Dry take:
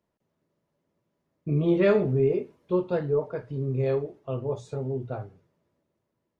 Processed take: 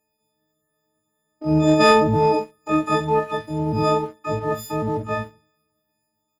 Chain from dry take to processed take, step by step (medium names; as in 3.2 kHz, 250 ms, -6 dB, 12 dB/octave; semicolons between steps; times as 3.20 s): partials quantised in pitch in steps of 6 st; waveshaping leveller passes 1; harmony voices -12 st -16 dB, +12 st -2 dB